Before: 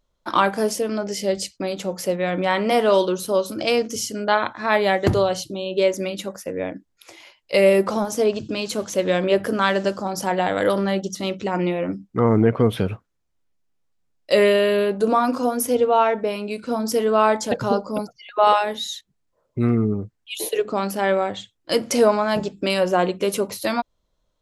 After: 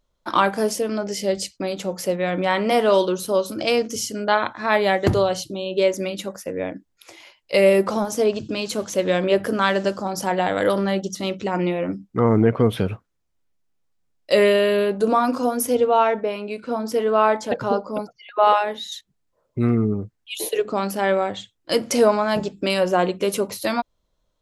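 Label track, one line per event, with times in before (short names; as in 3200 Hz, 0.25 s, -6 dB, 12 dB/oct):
16.200000	18.920000	tone controls bass -5 dB, treble -9 dB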